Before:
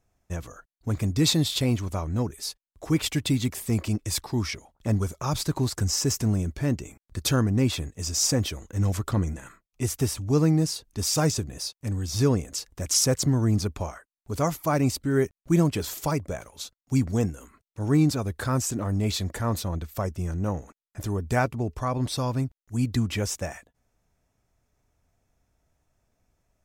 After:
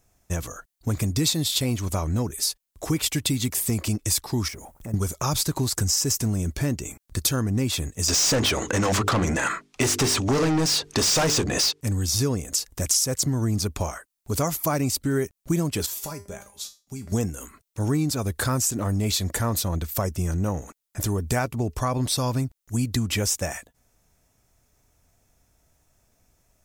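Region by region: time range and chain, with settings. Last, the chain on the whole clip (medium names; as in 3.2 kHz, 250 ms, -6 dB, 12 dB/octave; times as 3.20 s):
4.48–4.94 s: companding laws mixed up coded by mu + peaking EQ 3.8 kHz -13.5 dB 1.6 oct + compression 2.5:1, threshold -44 dBFS
8.08–11.81 s: low-pass 7.4 kHz + hum notches 50/100/150/200/250/300/350/400/450 Hz + overdrive pedal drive 30 dB, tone 2.3 kHz, clips at -10.5 dBFS
15.86–17.12 s: compression 4:1, threshold -26 dBFS + feedback comb 200 Hz, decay 0.29 s, mix 80%
whole clip: treble shelf 4.9 kHz +10.5 dB; compression 4:1, threshold -27 dBFS; trim +5.5 dB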